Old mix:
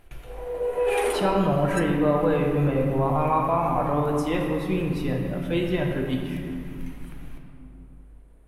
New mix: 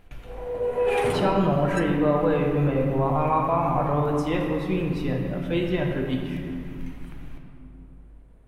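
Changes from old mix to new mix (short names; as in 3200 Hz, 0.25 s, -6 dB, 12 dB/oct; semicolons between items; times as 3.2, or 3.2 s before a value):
background: remove Chebyshev high-pass 340 Hz, order 3; master: add bell 11000 Hz -9 dB 0.73 oct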